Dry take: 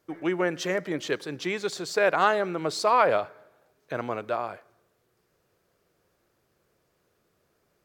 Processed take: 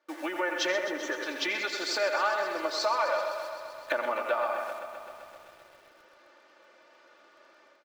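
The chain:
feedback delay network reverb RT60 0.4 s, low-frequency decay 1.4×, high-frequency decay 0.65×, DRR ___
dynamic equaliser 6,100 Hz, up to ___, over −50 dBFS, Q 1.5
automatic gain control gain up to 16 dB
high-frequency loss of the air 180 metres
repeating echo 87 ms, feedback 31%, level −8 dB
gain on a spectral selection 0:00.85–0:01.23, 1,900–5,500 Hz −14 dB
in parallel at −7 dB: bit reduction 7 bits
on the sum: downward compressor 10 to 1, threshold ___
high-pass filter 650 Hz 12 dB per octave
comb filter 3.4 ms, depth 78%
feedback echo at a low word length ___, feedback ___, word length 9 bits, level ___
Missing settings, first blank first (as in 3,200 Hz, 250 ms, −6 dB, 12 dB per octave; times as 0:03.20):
17.5 dB, +5 dB, −25 dBFS, 129 ms, 80%, −11 dB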